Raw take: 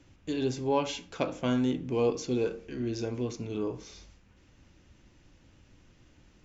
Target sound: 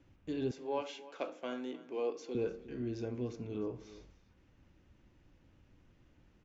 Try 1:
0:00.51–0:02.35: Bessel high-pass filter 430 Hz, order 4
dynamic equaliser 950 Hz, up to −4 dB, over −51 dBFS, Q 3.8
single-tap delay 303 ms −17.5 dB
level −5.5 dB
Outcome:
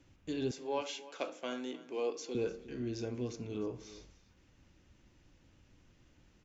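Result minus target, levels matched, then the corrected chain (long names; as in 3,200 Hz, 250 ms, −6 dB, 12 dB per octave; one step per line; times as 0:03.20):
2,000 Hz band +2.5 dB
0:00.51–0:02.35: Bessel high-pass filter 430 Hz, order 4
dynamic equaliser 950 Hz, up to −4 dB, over −51 dBFS, Q 3.8
low-pass filter 2,100 Hz 6 dB per octave
single-tap delay 303 ms −17.5 dB
level −5.5 dB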